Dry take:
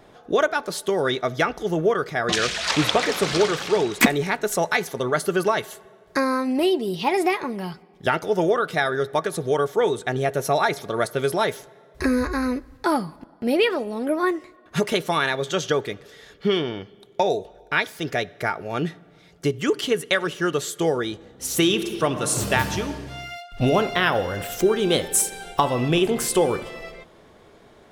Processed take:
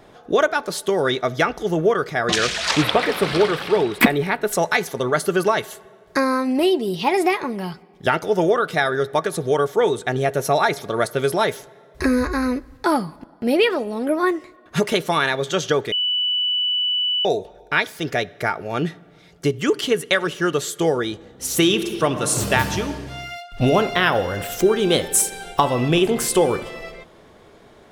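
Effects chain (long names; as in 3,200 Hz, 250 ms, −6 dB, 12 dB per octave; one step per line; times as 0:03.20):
0:02.82–0:04.53: parametric band 6,600 Hz −14.5 dB 0.69 octaves
0:15.92–0:17.25: beep over 2,970 Hz −20.5 dBFS
level +2.5 dB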